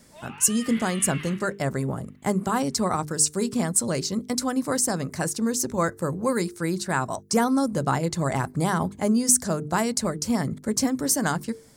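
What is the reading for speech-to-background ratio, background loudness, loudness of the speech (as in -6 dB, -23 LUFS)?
14.5 dB, -39.0 LUFS, -24.5 LUFS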